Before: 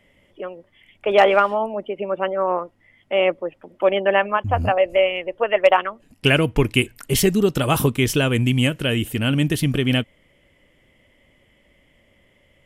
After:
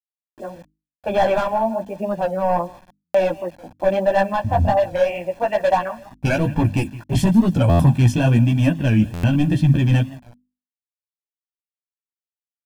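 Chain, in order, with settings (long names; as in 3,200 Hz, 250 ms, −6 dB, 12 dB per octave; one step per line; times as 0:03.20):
high-pass filter 100 Hz 6 dB per octave
repeating echo 168 ms, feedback 35%, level −22 dB
low-pass that shuts in the quiet parts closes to 840 Hz, open at −14.5 dBFS
hard clipping −15.5 dBFS, distortion −10 dB
multi-voice chorus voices 2, 0.98 Hz, delay 14 ms, depth 4 ms
bit-depth reduction 8 bits, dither none
tilt shelving filter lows +8 dB
mains-hum notches 50/100/150/200/250/300 Hz
comb filter 1.2 ms, depth 82%
buffer that repeats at 0:03.04/0:07.69/0:09.13, samples 512, times 8
wow of a warped record 45 rpm, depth 100 cents
level +1.5 dB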